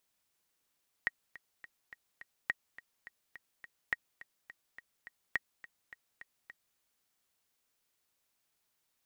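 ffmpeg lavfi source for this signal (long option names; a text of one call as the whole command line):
ffmpeg -f lavfi -i "aevalsrc='pow(10,(-17-18.5*gte(mod(t,5*60/210),60/210))/20)*sin(2*PI*1890*mod(t,60/210))*exp(-6.91*mod(t,60/210)/0.03)':duration=5.71:sample_rate=44100" out.wav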